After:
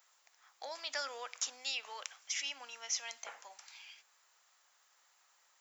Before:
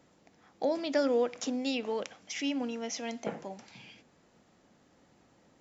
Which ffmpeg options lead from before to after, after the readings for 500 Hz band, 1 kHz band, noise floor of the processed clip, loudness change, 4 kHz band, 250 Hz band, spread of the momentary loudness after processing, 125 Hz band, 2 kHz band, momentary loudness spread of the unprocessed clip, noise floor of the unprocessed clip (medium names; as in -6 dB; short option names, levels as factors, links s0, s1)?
-19.5 dB, -6.5 dB, -72 dBFS, -7.0 dB, +0.5 dB, -36.5 dB, 16 LU, under -40 dB, -1.5 dB, 16 LU, -66 dBFS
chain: -af "highpass=f=1100:t=q:w=1.6,aemphasis=mode=production:type=riaa,volume=0.473"